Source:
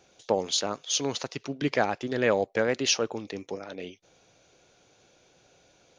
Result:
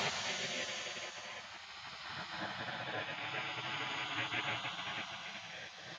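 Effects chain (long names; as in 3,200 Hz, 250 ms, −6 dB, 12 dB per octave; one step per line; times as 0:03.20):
slices reordered back to front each 108 ms, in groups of 3
source passing by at 0:02.02, 17 m/s, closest 14 metres
low-shelf EQ 300 Hz −7 dB
single-tap delay 661 ms −4.5 dB
extreme stretch with random phases 25×, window 0.10 s, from 0:01.79
flanger 0.38 Hz, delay 9.9 ms, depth 3.5 ms, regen +42%
gate on every frequency bin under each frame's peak −20 dB weak
high-pass filter 89 Hz
high-shelf EQ 4,000 Hz −5.5 dB
level +6 dB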